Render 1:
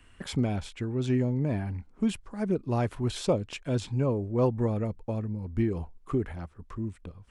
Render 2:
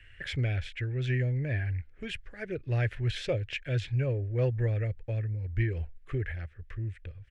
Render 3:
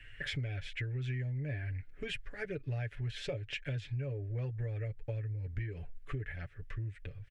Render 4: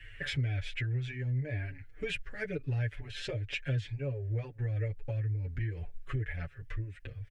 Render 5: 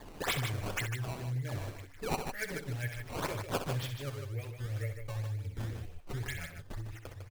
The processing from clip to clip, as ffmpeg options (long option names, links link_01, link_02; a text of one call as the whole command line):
ffmpeg -i in.wav -af "firequalizer=gain_entry='entry(120,0);entry(200,-21);entry(330,-11);entry(530,-6);entry(990,-22);entry(1700,7);entry(4300,-7);entry(8500,-16)':delay=0.05:min_phase=1,volume=3dB" out.wav
ffmpeg -i in.wav -af "aecho=1:1:7:0.64,acompressor=threshold=-35dB:ratio=6" out.wav
ffmpeg -i in.wav -filter_complex "[0:a]asplit=2[link_01][link_02];[link_02]adelay=6,afreqshift=-2.1[link_03];[link_01][link_03]amix=inputs=2:normalize=1,volume=6dB" out.wav
ffmpeg -i in.wav -af "crystalizer=i=7:c=0,acrusher=samples=15:mix=1:aa=0.000001:lfo=1:lforange=24:lforate=2,aecho=1:1:64.14|151.6:0.355|0.447,volume=-5.5dB" out.wav